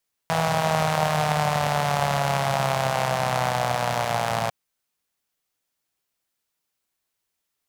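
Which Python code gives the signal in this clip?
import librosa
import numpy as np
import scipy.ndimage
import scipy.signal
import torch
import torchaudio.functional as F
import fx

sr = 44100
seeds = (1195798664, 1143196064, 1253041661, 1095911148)

y = fx.engine_four_rev(sr, seeds[0], length_s=4.2, rpm=4900, resonances_hz=(150.0, 690.0), end_rpm=3400)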